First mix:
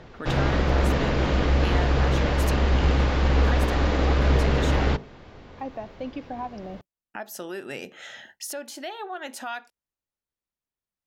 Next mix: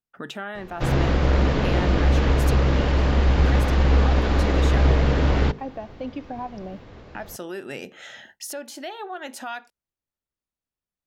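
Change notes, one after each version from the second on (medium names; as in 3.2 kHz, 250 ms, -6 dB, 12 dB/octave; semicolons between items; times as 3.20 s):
background: entry +0.55 s; master: add bass shelf 370 Hz +3 dB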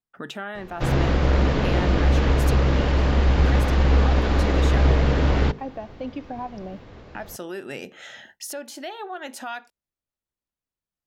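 no change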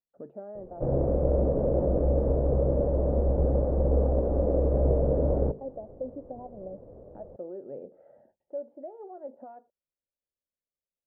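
background +3.5 dB; master: add four-pole ladder low-pass 620 Hz, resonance 65%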